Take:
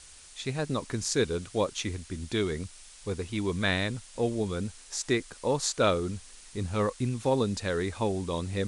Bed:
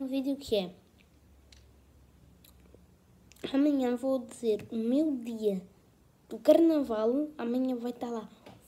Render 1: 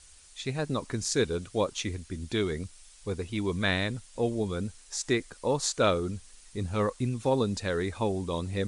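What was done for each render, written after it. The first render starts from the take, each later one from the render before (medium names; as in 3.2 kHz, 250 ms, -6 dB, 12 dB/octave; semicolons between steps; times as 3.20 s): noise reduction 6 dB, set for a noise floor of -51 dBFS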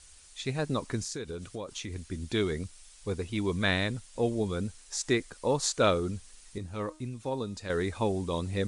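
1.01–1.96 s: compression, threshold -34 dBFS; 6.58–7.70 s: feedback comb 310 Hz, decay 0.4 s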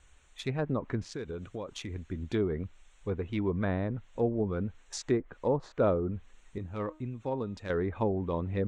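local Wiener filter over 9 samples; low-pass that closes with the level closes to 890 Hz, closed at -24.5 dBFS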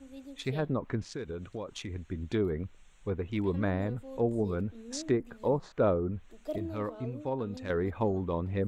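add bed -15.5 dB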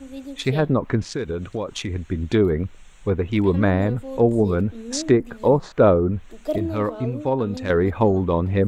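trim +11.5 dB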